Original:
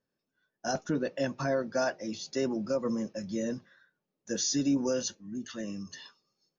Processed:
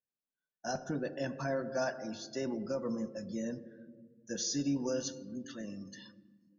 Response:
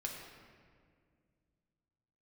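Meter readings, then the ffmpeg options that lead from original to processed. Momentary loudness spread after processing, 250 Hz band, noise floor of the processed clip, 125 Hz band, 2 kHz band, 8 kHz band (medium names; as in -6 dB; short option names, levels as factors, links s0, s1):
17 LU, -5.0 dB, under -85 dBFS, -3.0 dB, -4.5 dB, no reading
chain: -filter_complex "[0:a]asplit=2[s0][s1];[1:a]atrim=start_sample=2205[s2];[s1][s2]afir=irnorm=-1:irlink=0,volume=0.631[s3];[s0][s3]amix=inputs=2:normalize=0,afftdn=nr=14:nf=-49,volume=0.398"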